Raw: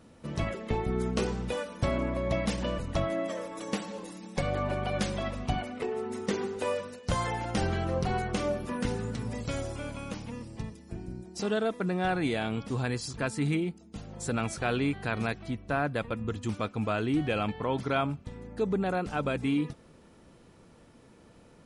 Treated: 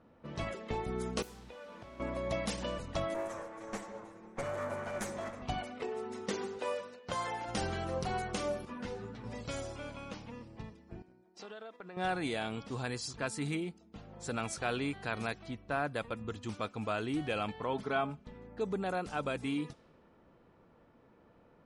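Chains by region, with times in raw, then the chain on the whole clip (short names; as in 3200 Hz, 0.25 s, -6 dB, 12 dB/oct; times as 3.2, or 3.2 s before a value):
1.22–2 modulation noise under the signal 11 dB + compressor 20:1, threshold -39 dBFS + doubler 19 ms -11 dB
3.14–5.42 minimum comb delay 8.8 ms + band shelf 3700 Hz -10.5 dB 1.2 oct
6.58–7.48 HPF 230 Hz 6 dB/oct + high shelf 6200 Hz -9 dB
8.65–9.24 LPF 3700 Hz 6 dB/oct + ensemble effect
11.02–11.97 HPF 520 Hz 6 dB/oct + gate -47 dBFS, range -7 dB + compressor 16:1, threshold -37 dBFS
17.73–18.35 high shelf 4200 Hz -11 dB + comb 4.7 ms, depth 58%
whole clip: low shelf 490 Hz -9.5 dB; low-pass opened by the level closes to 1700 Hz, open at -31.5 dBFS; bell 2100 Hz -4 dB 1.8 oct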